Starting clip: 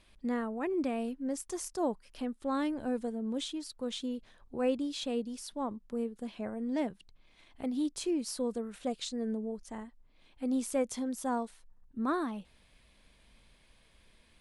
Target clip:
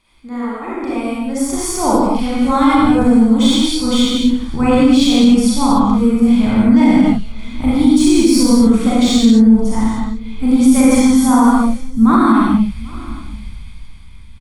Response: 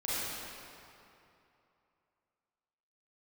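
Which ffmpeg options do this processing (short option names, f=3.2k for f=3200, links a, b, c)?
-filter_complex "[0:a]lowshelf=f=180:g=-9.5,aecho=1:1:0.9:0.5,asubboost=boost=11.5:cutoff=130,acrossover=split=1400[a][b];[a]acontrast=35[c];[b]aeval=exprs='0.0668*(cos(1*acos(clip(val(0)/0.0668,-1,1)))-cos(1*PI/2))+0.0075*(cos(5*acos(clip(val(0)/0.0668,-1,1)))-cos(5*PI/2))':c=same[d];[c][d]amix=inputs=2:normalize=0,dynaudnorm=f=230:g=11:m=13dB,aecho=1:1:791:0.0668[e];[1:a]atrim=start_sample=2205,afade=t=out:st=0.36:d=0.01,atrim=end_sample=16317[f];[e][f]afir=irnorm=-1:irlink=0,alimiter=level_in=2dB:limit=-1dB:release=50:level=0:latency=1,volume=-1dB"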